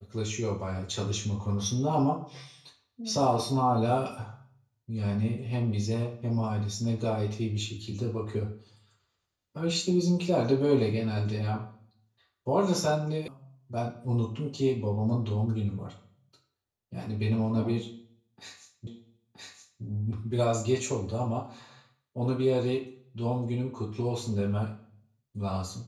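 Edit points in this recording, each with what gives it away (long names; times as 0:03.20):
0:13.28: cut off before it has died away
0:18.87: the same again, the last 0.97 s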